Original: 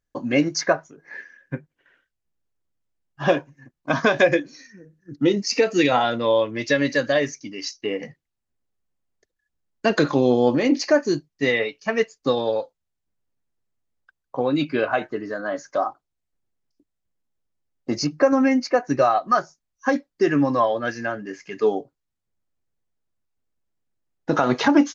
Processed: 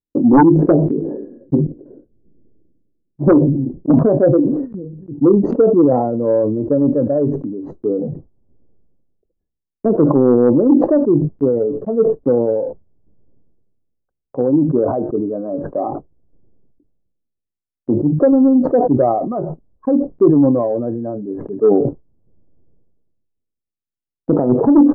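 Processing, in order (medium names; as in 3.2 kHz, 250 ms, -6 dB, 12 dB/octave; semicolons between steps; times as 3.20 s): inverse Chebyshev low-pass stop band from 2.1 kHz, stop band 70 dB; gate with hold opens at -46 dBFS; peaking EQ 300 Hz +11.5 dB 1.6 oct, from 3.99 s 1.2 kHz; sine folder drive 9 dB, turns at 1.5 dBFS; decay stretcher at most 38 dB/s; trim -6 dB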